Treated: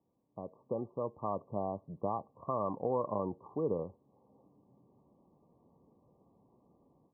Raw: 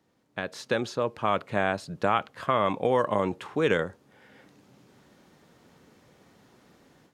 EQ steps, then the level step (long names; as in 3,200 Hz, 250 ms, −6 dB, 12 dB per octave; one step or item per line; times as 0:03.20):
linear-phase brick-wall low-pass 1,200 Hz
high-frequency loss of the air 460 metres
−7.5 dB